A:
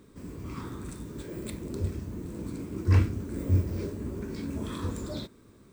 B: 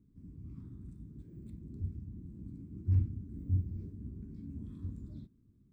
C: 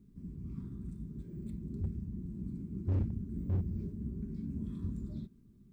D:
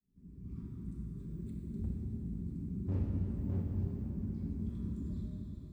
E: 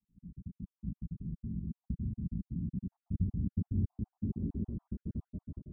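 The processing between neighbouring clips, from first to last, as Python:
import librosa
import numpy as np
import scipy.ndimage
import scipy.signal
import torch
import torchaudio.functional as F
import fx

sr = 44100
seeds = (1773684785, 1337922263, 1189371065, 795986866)

y1 = fx.curve_eq(x, sr, hz=(150.0, 280.0, 530.0), db=(0, -6, -26))
y1 = F.gain(torch.from_numpy(y1), -6.5).numpy()
y2 = y1 + 0.43 * np.pad(y1, (int(5.1 * sr / 1000.0), 0))[:len(y1)]
y2 = np.clip(y2, -10.0 ** (-32.5 / 20.0), 10.0 ** (-32.5 / 20.0))
y2 = F.gain(torch.from_numpy(y2), 5.5).numpy()
y3 = fx.fade_in_head(y2, sr, length_s=0.53)
y3 = fx.rev_plate(y3, sr, seeds[0], rt60_s=4.8, hf_ratio=0.95, predelay_ms=0, drr_db=-2.0)
y3 = F.gain(torch.from_numpy(y3), -4.0).numpy()
y4 = fx.spec_dropout(y3, sr, seeds[1], share_pct=47)
y4 = fx.filter_sweep_lowpass(y4, sr, from_hz=200.0, to_hz=520.0, start_s=3.41, end_s=4.72, q=1.3)
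y4 = F.gain(torch.from_numpy(y4), 3.0).numpy()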